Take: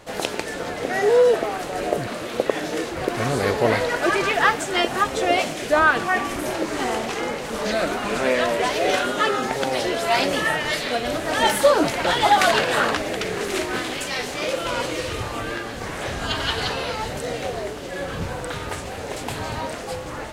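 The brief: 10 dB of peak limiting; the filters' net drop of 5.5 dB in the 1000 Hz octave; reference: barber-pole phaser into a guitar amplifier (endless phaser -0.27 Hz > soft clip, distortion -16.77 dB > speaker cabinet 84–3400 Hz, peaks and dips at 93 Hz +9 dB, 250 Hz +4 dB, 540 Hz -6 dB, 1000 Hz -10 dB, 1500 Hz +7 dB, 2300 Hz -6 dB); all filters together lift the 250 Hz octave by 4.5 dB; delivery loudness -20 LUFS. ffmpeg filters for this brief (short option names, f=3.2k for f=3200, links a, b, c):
-filter_complex "[0:a]equalizer=f=250:t=o:g=4,equalizer=f=1k:t=o:g=-5,alimiter=limit=-13.5dB:level=0:latency=1,asplit=2[a][b];[b]afreqshift=-0.27[c];[a][c]amix=inputs=2:normalize=1,asoftclip=threshold=-21dB,highpass=84,equalizer=f=93:t=q:w=4:g=9,equalizer=f=250:t=q:w=4:g=4,equalizer=f=540:t=q:w=4:g=-6,equalizer=f=1k:t=q:w=4:g=-10,equalizer=f=1.5k:t=q:w=4:g=7,equalizer=f=2.3k:t=q:w=4:g=-6,lowpass=f=3.4k:w=0.5412,lowpass=f=3.4k:w=1.3066,volume=10.5dB"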